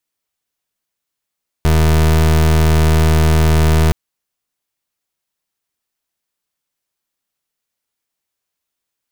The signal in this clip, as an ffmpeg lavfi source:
ffmpeg -f lavfi -i "aevalsrc='0.282*(2*lt(mod(78.8*t,1),0.29)-1)':duration=2.27:sample_rate=44100" out.wav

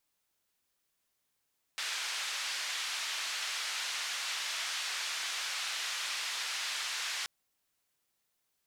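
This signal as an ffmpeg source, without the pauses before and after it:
ffmpeg -f lavfi -i "anoisesrc=color=white:duration=5.48:sample_rate=44100:seed=1,highpass=frequency=1300,lowpass=frequency=4900,volume=-24.1dB" out.wav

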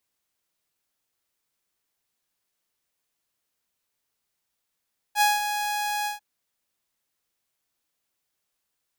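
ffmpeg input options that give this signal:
ffmpeg -f lavfi -i "aevalsrc='0.2*(2*mod(832*t,1)-1)':duration=1.045:sample_rate=44100,afade=type=in:duration=0.063,afade=type=out:start_time=0.063:duration=0.182:silence=0.355,afade=type=out:start_time=0.91:duration=0.135" out.wav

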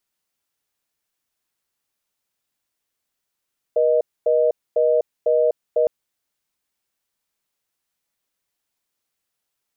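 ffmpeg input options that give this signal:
ffmpeg -f lavfi -i "aevalsrc='0.141*(sin(2*PI*480*t)+sin(2*PI*620*t))*clip(min(mod(t,0.5),0.25-mod(t,0.5))/0.005,0,1)':duration=2.11:sample_rate=44100" out.wav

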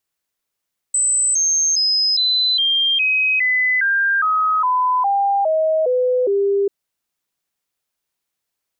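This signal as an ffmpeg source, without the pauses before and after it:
ffmpeg -f lavfi -i "aevalsrc='0.2*clip(min(mod(t,0.41),0.41-mod(t,0.41))/0.005,0,1)*sin(2*PI*8040*pow(2,-floor(t/0.41)/3)*mod(t,0.41))':duration=5.74:sample_rate=44100" out.wav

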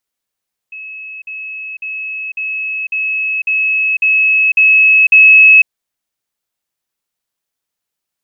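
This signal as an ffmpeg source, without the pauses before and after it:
ffmpeg -f lavfi -i "aevalsrc='pow(10,(-26+3*floor(t/0.55))/20)*sin(2*PI*2580*t)*clip(min(mod(t,0.55),0.5-mod(t,0.55))/0.005,0,1)':duration=4.95:sample_rate=44100" out.wav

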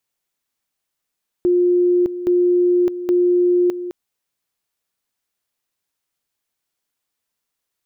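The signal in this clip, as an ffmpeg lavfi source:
ffmpeg -f lavfi -i "aevalsrc='pow(10,(-12-12*gte(mod(t,0.82),0.61))/20)*sin(2*PI*355*t)':duration=2.46:sample_rate=44100" out.wav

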